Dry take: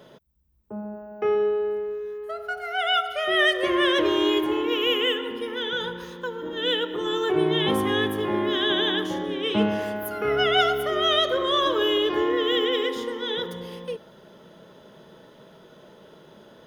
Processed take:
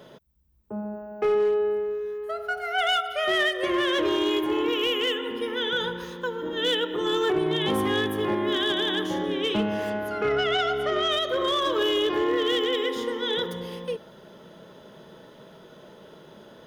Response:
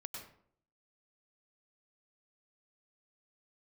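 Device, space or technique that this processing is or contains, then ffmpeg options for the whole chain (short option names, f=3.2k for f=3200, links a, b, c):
limiter into clipper: -filter_complex "[0:a]alimiter=limit=-16dB:level=0:latency=1:release=334,asoftclip=type=hard:threshold=-19.5dB,asettb=1/sr,asplit=3[a][b][c];[a]atrim=end=9.904[d];[b]atrim=start=9.9:end=11.12,asetpts=PTS-STARTPTS,afade=t=in:d=0.004:c=qsin,afade=t=out:st=1.216:d=0.004:c=qsin,lowpass=6.2k[e];[c]atrim=start=11.116[f];[d][e]acrossfade=d=0.004:c1=hsin:c2=qsin[g];[g][f]acrossfade=d=0.004:c1=qsin:c2=hsin,volume=1.5dB"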